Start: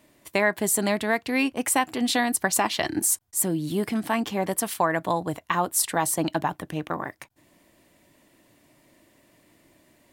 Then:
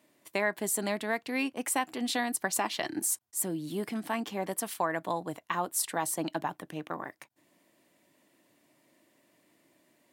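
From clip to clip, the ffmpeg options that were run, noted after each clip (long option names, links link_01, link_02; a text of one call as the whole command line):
ffmpeg -i in.wav -af "highpass=170,volume=-7dB" out.wav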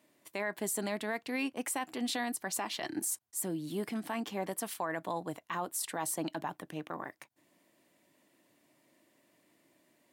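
ffmpeg -i in.wav -af "alimiter=limit=-22.5dB:level=0:latency=1:release=24,volume=-2dB" out.wav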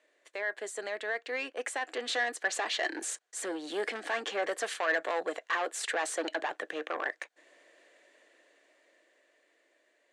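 ffmpeg -i in.wav -af "dynaudnorm=framelen=250:gausssize=17:maxgain=10.5dB,asoftclip=type=tanh:threshold=-25dB,highpass=frequency=410:width=0.5412,highpass=frequency=410:width=1.3066,equalizer=frequency=480:width_type=q:width=4:gain=6,equalizer=frequency=950:width_type=q:width=4:gain=-7,equalizer=frequency=1700:width_type=q:width=4:gain=8,equalizer=frequency=5200:width_type=q:width=4:gain=-6,lowpass=frequency=7300:width=0.5412,lowpass=frequency=7300:width=1.3066" out.wav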